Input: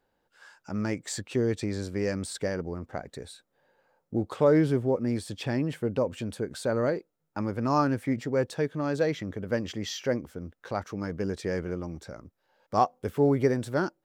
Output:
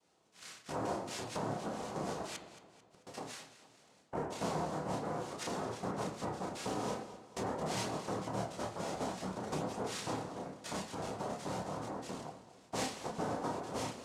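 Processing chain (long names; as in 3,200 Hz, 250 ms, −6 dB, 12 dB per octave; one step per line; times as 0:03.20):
tuned comb filter 220 Hz, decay 0.48 s, harmonics odd, mix 80%
cochlear-implant simulation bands 2
multi-voice chorus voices 2, 0.25 Hz, delay 30 ms, depth 4.4 ms
downward compressor 3 to 1, threshold −58 dBFS, peak gain reduction 18 dB
0:02.36–0:03.07: gate with flip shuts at −53 dBFS, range −27 dB
on a send at −5.5 dB: convolution reverb RT60 0.85 s, pre-delay 3 ms
on the sum: feedback echo with a swinging delay time 221 ms, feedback 46%, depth 64 cents, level −15 dB
level +17 dB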